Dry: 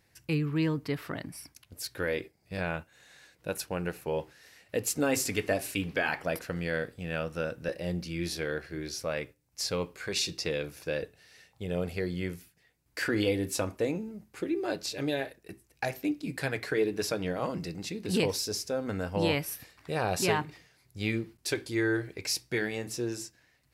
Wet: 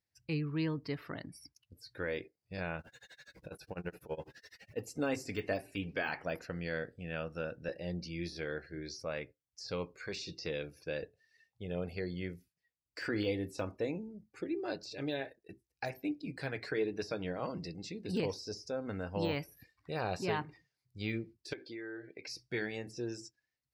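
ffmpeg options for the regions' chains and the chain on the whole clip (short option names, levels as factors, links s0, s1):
-filter_complex "[0:a]asettb=1/sr,asplit=3[s0][s1][s2];[s0]atrim=end=2.794[s3];[s1]atrim=start=2.79:end=4.81,asetpts=PTS-STARTPTS,afade=t=in:d=0.004:c=qsin,afade=t=out:st=2.016:d=0.004:c=qsin,aeval=exprs='val(0)+0.5*0.00944*sgn(val(0))':c=same,tremolo=f=12:d=0.96[s4];[s2]atrim=start=4.806[s5];[s3][s4]acrossfade=d=0.004:c1=hsin:c2=qsin[s6];[s6][s5]acrossfade=d=0.004:c1=qsin:c2=hsin,asettb=1/sr,asplit=3[s7][s8][s9];[s7]atrim=end=21.534[s10];[s8]atrim=start=21.53:end=22.28,asetpts=PTS-STARTPTS,afade=t=in:d=0.004:c=qsin,afade=t=out:st=0.746:d=0.004:c=qsin,highpass=220,lowpass=4100,acompressor=threshold=0.0178:ratio=5:attack=3.2:release=140:knee=1:detection=peak[s11];[s9]atrim=start=22.276[s12];[s10][s11]acrossfade=d=0.004:c1=hsin:c2=qsin[s13];[s13][s12]acrossfade=d=0.004:c1=qsin:c2=hsin,deesser=1,afftdn=nr=19:nf=-50,equalizer=f=5100:t=o:w=0.76:g=6,volume=0.501"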